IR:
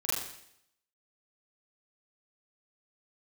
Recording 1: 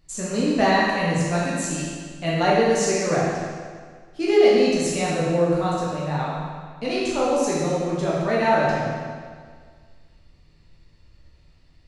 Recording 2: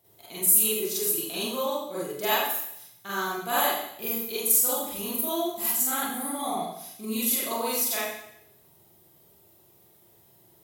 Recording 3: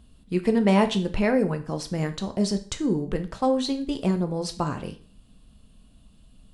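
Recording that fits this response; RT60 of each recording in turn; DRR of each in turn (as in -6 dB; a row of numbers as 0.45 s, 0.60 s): 2; 1.8 s, 0.70 s, 0.45 s; -7.0 dB, -9.0 dB, 7.0 dB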